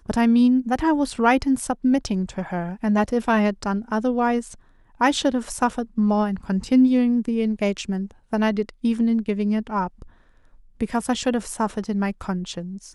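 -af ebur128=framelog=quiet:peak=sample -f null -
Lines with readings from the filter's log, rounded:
Integrated loudness:
  I:         -22.3 LUFS
  Threshold: -32.6 LUFS
Loudness range:
  LRA:         4.1 LU
  Threshold: -42.8 LUFS
  LRA low:   -25.3 LUFS
  LRA high:  -21.2 LUFS
Sample peak:
  Peak:       -5.1 dBFS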